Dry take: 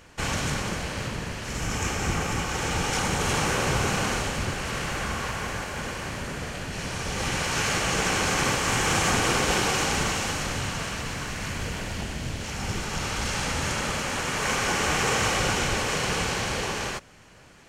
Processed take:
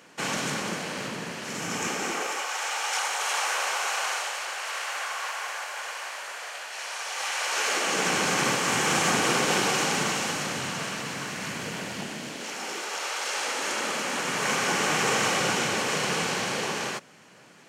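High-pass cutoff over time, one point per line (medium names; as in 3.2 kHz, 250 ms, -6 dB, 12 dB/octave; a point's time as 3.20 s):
high-pass 24 dB/octave
1.89 s 170 Hz
2.55 s 650 Hz
7.38 s 650 Hz
8.15 s 150 Hz
11.98 s 150 Hz
13.14 s 490 Hz
14.39 s 150 Hz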